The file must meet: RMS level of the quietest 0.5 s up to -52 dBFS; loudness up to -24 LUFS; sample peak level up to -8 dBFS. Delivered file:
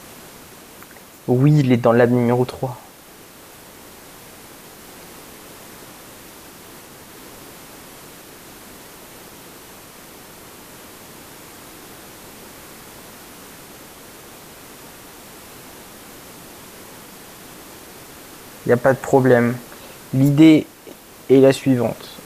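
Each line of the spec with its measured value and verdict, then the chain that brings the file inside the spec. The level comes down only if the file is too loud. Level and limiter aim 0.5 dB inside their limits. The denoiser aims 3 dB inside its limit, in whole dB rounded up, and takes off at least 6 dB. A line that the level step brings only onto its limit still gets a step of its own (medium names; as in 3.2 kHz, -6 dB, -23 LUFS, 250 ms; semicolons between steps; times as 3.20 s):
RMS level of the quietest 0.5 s -43 dBFS: fail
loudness -16.0 LUFS: fail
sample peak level -1.5 dBFS: fail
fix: noise reduction 6 dB, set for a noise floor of -43 dBFS; trim -8.5 dB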